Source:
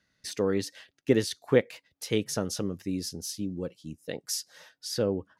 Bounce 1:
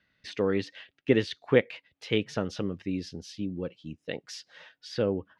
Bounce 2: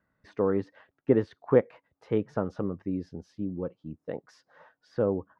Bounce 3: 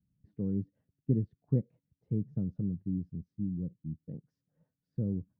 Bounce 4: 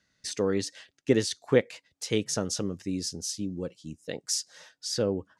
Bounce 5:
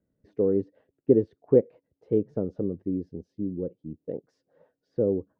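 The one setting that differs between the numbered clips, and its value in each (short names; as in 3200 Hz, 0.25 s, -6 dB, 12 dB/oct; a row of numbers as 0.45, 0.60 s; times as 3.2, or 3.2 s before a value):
synth low-pass, frequency: 2900, 1100, 160, 7800, 440 Hz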